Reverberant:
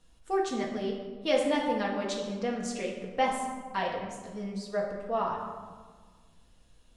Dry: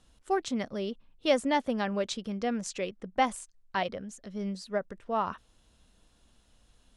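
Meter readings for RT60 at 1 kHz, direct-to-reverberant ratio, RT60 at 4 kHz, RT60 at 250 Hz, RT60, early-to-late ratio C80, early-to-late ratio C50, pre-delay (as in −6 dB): 1.5 s, −2.5 dB, 0.85 s, 2.0 s, 1.5 s, 5.5 dB, 3.5 dB, 4 ms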